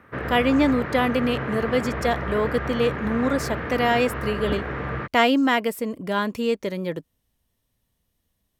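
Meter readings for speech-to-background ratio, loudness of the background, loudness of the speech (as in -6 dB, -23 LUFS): 6.0 dB, -29.5 LUFS, -23.5 LUFS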